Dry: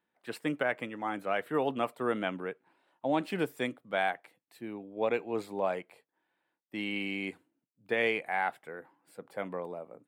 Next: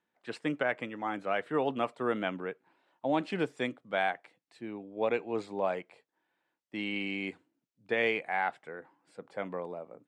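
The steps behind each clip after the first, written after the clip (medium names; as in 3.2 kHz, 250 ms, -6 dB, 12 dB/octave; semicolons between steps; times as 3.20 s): low-pass 7.6 kHz 24 dB/octave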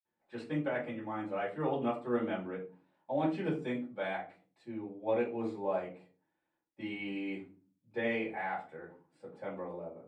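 reverberation RT60 0.35 s, pre-delay 47 ms; trim +5 dB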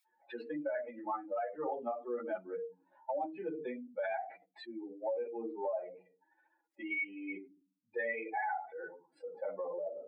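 spectral contrast enhancement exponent 2.4; high-pass 1 kHz 12 dB/octave; compression 4:1, threshold -53 dBFS, peak gain reduction 13 dB; trim +17.5 dB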